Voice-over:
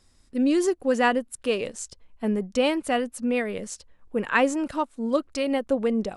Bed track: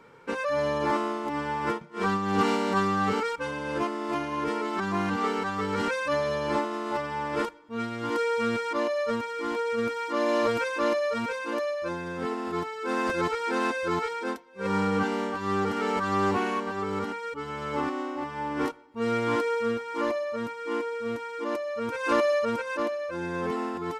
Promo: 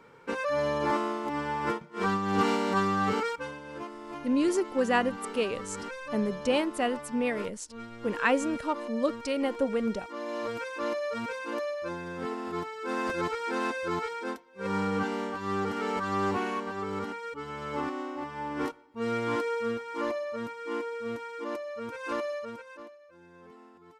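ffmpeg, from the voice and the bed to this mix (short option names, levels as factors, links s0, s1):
-filter_complex "[0:a]adelay=3900,volume=0.631[s0];[1:a]volume=2,afade=t=out:st=3.28:d=0.33:silence=0.334965,afade=t=in:st=10.24:d=1.17:silence=0.421697,afade=t=out:st=21.25:d=1.74:silence=0.112202[s1];[s0][s1]amix=inputs=2:normalize=0"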